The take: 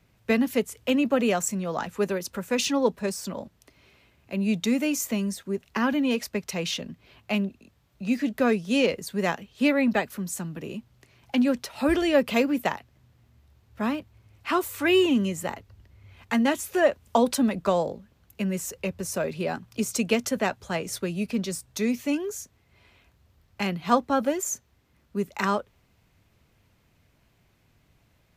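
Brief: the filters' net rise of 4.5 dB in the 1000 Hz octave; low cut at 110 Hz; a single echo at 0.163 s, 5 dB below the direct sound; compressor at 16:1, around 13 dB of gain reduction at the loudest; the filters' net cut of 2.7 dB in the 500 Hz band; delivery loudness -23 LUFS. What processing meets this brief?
HPF 110 Hz; bell 500 Hz -5.5 dB; bell 1000 Hz +7.5 dB; compressor 16:1, threshold -25 dBFS; echo 0.163 s -5 dB; gain +7.5 dB

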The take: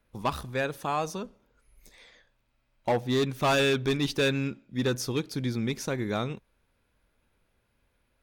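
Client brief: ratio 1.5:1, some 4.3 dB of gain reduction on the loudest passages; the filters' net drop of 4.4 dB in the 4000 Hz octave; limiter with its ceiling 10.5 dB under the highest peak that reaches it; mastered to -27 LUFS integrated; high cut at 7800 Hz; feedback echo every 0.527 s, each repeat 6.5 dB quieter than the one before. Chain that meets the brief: LPF 7800 Hz; bell 4000 Hz -5 dB; compressor 1.5:1, threshold -34 dBFS; limiter -32 dBFS; feedback echo 0.527 s, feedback 47%, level -6.5 dB; gain +13 dB

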